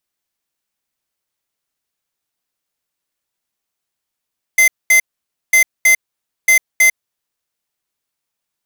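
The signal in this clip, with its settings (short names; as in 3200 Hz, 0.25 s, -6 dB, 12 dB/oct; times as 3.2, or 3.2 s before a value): beep pattern square 2070 Hz, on 0.10 s, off 0.22 s, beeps 2, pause 0.53 s, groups 3, -9.5 dBFS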